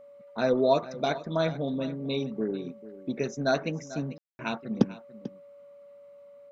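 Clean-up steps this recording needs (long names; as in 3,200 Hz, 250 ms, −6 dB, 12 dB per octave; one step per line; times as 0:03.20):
clipped peaks rebuilt −9.5 dBFS
notch filter 570 Hz, Q 30
ambience match 0:04.18–0:04.39
echo removal 443 ms −16 dB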